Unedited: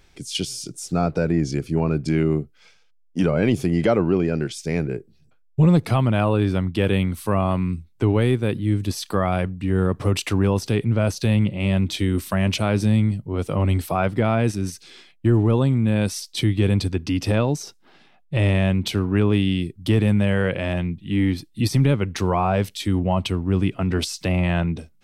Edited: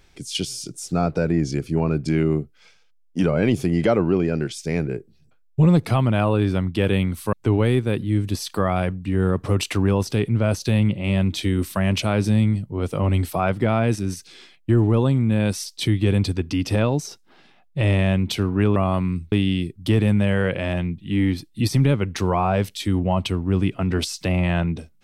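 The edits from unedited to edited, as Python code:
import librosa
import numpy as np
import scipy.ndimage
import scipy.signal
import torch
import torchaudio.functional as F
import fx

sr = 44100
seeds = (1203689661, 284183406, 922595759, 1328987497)

y = fx.edit(x, sr, fx.move(start_s=7.33, length_s=0.56, to_s=19.32), tone=tone)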